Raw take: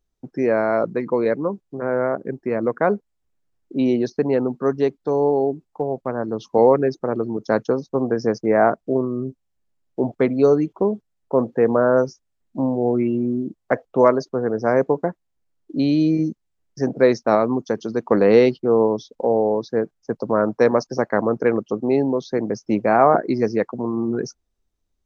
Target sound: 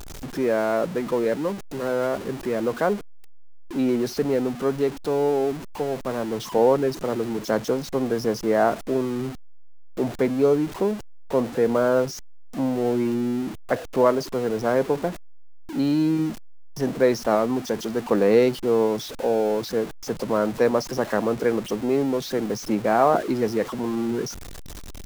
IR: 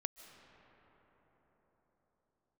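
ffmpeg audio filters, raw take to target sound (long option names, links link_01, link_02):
-af "aeval=exprs='val(0)+0.5*0.0501*sgn(val(0))':channel_layout=same,volume=-4.5dB"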